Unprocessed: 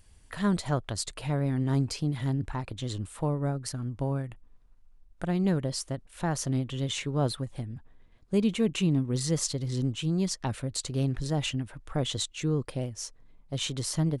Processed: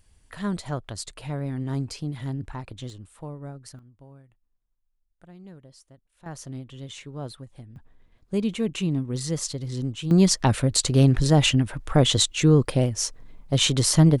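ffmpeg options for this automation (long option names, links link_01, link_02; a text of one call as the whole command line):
ffmpeg -i in.wav -af "asetnsamples=nb_out_samples=441:pad=0,asendcmd='2.9 volume volume -8.5dB;3.79 volume volume -19dB;6.26 volume volume -8dB;7.76 volume volume 0dB;10.11 volume volume 11dB',volume=-2dB" out.wav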